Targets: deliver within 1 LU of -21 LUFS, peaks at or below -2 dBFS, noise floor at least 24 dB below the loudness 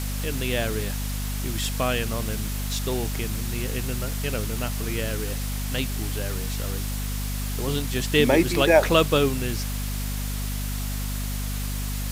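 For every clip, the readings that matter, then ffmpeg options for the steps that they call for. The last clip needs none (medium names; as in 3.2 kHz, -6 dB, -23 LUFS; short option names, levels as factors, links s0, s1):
hum 50 Hz; highest harmonic 250 Hz; hum level -26 dBFS; noise floor -29 dBFS; noise floor target -50 dBFS; loudness -26.0 LUFS; peak level -4.5 dBFS; loudness target -21.0 LUFS
-> -af "bandreject=f=50:t=h:w=4,bandreject=f=100:t=h:w=4,bandreject=f=150:t=h:w=4,bandreject=f=200:t=h:w=4,bandreject=f=250:t=h:w=4"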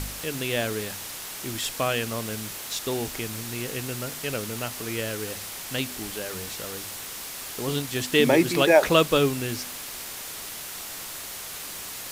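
hum not found; noise floor -37 dBFS; noise floor target -51 dBFS
-> -af "afftdn=nr=14:nf=-37"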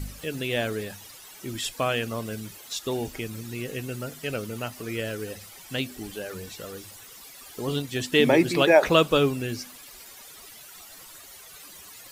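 noise floor -47 dBFS; noise floor target -51 dBFS
-> -af "afftdn=nr=6:nf=-47"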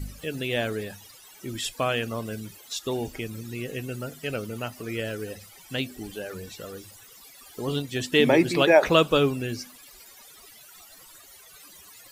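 noise floor -50 dBFS; noise floor target -51 dBFS
-> -af "afftdn=nr=6:nf=-50"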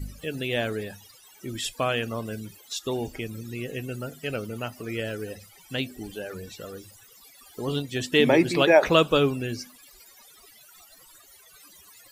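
noise floor -53 dBFS; loudness -26.5 LUFS; peak level -4.5 dBFS; loudness target -21.0 LUFS
-> -af "volume=1.88,alimiter=limit=0.794:level=0:latency=1"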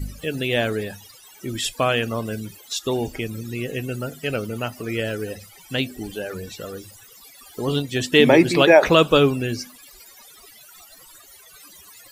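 loudness -21.0 LUFS; peak level -2.0 dBFS; noise floor -48 dBFS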